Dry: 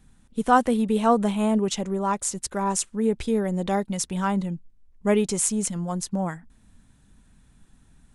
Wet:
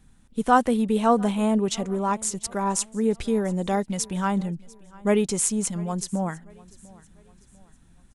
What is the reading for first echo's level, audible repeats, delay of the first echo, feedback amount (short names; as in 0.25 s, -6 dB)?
-23.0 dB, 2, 0.696 s, 42%